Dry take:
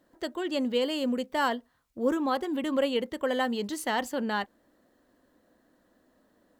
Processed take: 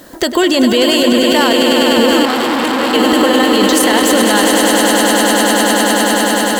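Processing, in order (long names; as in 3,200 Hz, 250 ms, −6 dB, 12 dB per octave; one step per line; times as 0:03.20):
high-shelf EQ 3,100 Hz +10 dB
downward compressor, threshold −32 dBFS, peak gain reduction 11.5 dB
echo that builds up and dies away 100 ms, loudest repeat 8, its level −7.5 dB
boost into a limiter +28 dB
0:02.25–0:02.94: saturating transformer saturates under 1,200 Hz
level −1 dB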